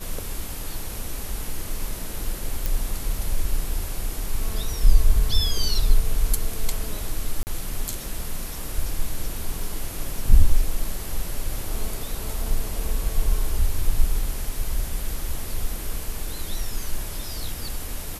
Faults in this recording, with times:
2.66 s: pop
7.43–7.47 s: dropout 39 ms

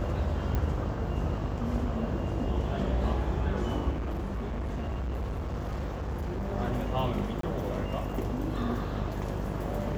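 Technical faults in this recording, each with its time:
buzz 50 Hz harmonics 23 -35 dBFS
0.55 s: pop -18 dBFS
3.91–6.52 s: clipped -29.5 dBFS
7.41–7.43 s: dropout 23 ms

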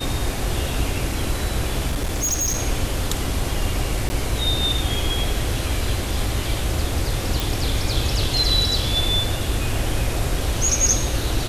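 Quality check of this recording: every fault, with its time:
1.90–2.59 s: clipped -18.5 dBFS
4.09–4.10 s: dropout 10 ms
7.40 s: pop

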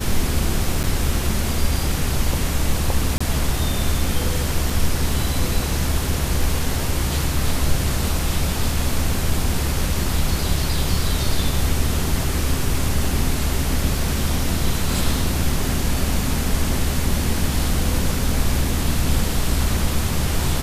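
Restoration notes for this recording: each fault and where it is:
0.83–0.84 s: dropout 8.4 ms
3.18–3.21 s: dropout 25 ms
4.70 s: dropout 2.7 ms

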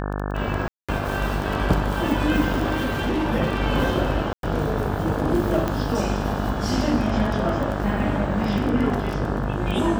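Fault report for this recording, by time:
buzz 50 Hz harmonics 35 -27 dBFS
crackle 14 per s -25 dBFS
0.68–0.89 s: dropout 206 ms
2.74–3.29 s: clipped -19.5 dBFS
4.33–4.43 s: dropout 102 ms
5.68 s: pop -11 dBFS

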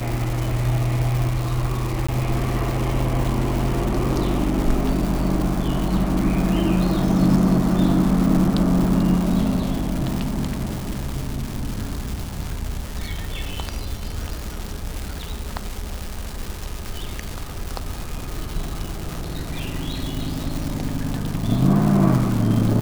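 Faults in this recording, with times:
crackle 490 per s -25 dBFS
2.07–2.08 s: dropout 15 ms

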